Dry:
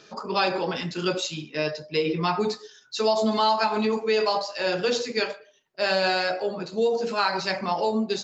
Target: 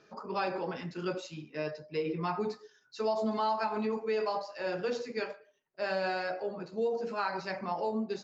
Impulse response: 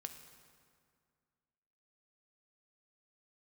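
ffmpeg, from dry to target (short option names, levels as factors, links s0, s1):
-af "lowpass=4600,equalizer=f=3500:w=1.6:g=-9.5,volume=0.398"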